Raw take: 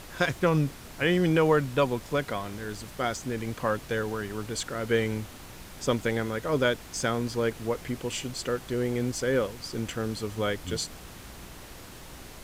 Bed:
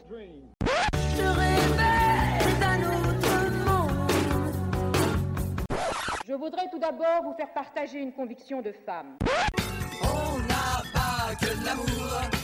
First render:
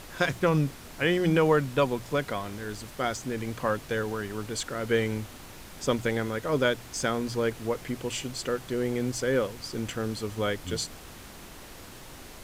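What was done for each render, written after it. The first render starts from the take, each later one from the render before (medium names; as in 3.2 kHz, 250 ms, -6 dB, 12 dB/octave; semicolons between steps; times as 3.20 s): de-hum 60 Hz, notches 3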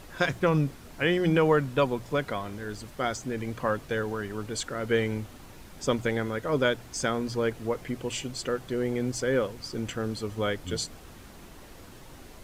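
noise reduction 6 dB, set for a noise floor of -46 dBFS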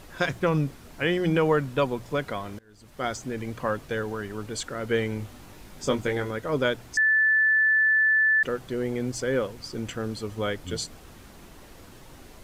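2.59–3.05 s: fade in quadratic, from -23.5 dB; 5.18–6.31 s: doubling 20 ms -6 dB; 6.97–8.43 s: bleep 1.75 kHz -17.5 dBFS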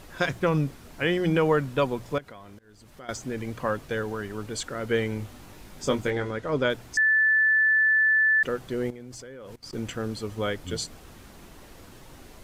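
2.18–3.09 s: compression 2.5:1, threshold -47 dBFS; 6.10–6.70 s: distance through air 54 m; 8.90–9.73 s: level held to a coarse grid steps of 21 dB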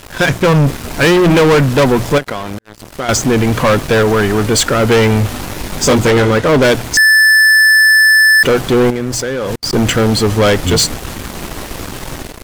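level rider gain up to 6 dB; waveshaping leveller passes 5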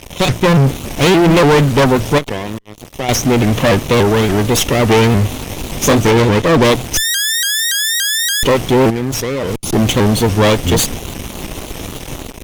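comb filter that takes the minimum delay 0.32 ms; vibrato with a chosen wave saw up 3.5 Hz, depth 160 cents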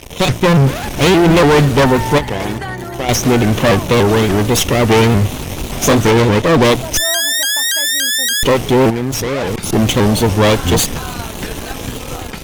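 add bed -0.5 dB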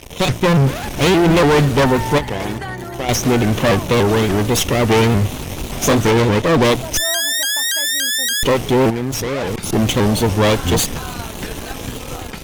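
trim -3 dB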